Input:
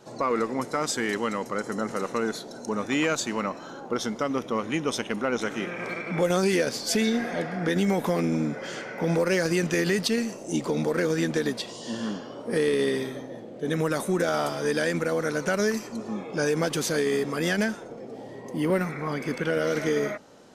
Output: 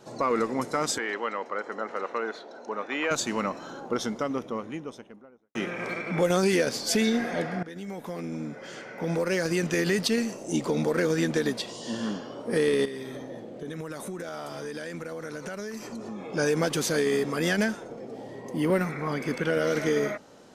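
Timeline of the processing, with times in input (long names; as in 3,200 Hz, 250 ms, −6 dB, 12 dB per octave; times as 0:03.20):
0:00.98–0:03.11: band-pass filter 470–2,700 Hz
0:03.77–0:05.55: fade out and dull
0:07.63–0:10.16: fade in, from −18 dB
0:12.85–0:16.33: downward compressor, threshold −33 dBFS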